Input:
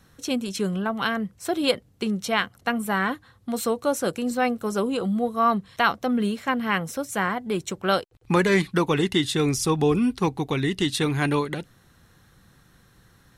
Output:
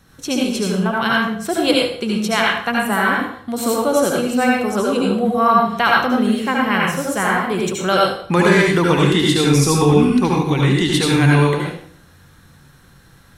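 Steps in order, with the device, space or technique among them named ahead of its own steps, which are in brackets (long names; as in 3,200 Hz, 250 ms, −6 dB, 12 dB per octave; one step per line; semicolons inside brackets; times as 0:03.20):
bathroom (convolution reverb RT60 0.55 s, pre-delay 68 ms, DRR −3 dB)
level +3.5 dB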